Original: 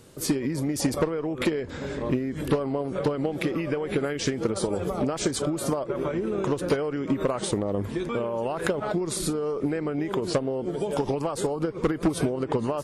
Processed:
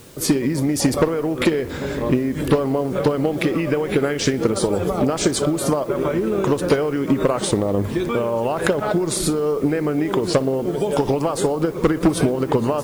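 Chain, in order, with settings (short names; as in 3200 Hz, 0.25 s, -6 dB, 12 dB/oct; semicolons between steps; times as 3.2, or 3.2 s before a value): darkening echo 60 ms, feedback 81%, low-pass 4000 Hz, level -19.5 dB; in parallel at -6 dB: requantised 8-bit, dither triangular; on the sum: gain +3.5 dB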